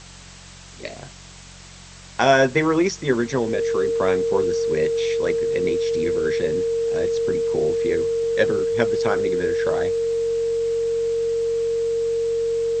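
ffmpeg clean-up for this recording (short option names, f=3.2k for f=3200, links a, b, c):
-af "bandreject=f=45.5:t=h:w=4,bandreject=f=91:t=h:w=4,bandreject=f=136.5:t=h:w=4,bandreject=f=182:t=h:w=4,bandreject=f=460:w=30,afftdn=nr=26:nf=-42"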